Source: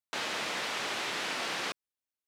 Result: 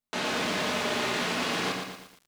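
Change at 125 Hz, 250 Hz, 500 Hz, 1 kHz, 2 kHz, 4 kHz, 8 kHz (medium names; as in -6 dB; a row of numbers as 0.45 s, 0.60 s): +14.0 dB, +13.0 dB, +9.0 dB, +5.5 dB, +4.0 dB, +3.5 dB, +3.5 dB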